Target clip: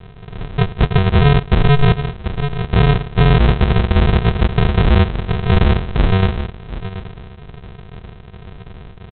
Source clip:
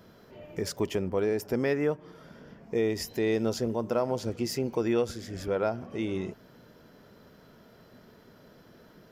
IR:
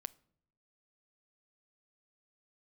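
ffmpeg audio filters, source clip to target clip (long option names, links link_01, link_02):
-af "aecho=1:1:728|1456:0.188|0.0377,aresample=8000,acrusher=samples=28:mix=1:aa=0.000001,aresample=44100,alimiter=level_in=23.5dB:limit=-1dB:release=50:level=0:latency=1,volume=-3.5dB"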